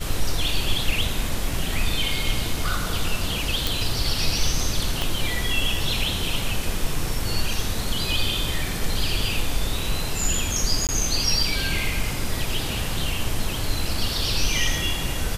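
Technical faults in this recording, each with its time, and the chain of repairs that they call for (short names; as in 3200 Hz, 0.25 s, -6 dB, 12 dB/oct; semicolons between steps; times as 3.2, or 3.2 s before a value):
3.67 pop
5.02 pop
10.87–10.89 gap 18 ms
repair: de-click; interpolate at 10.87, 18 ms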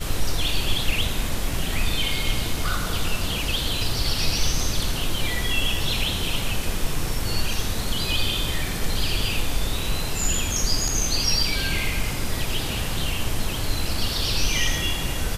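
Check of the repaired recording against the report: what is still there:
5.02 pop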